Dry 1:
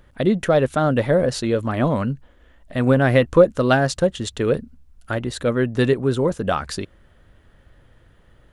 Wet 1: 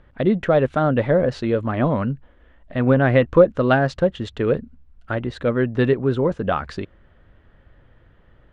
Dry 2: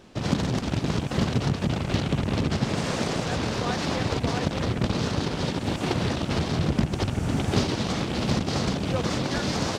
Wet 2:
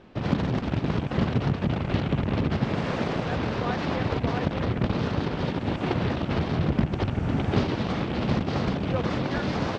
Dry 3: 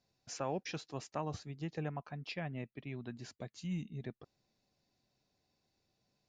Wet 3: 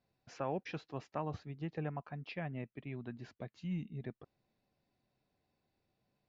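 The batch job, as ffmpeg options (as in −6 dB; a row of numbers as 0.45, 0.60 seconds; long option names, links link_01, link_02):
-af "lowpass=2800"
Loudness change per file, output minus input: 0.0, −0.5, −0.5 LU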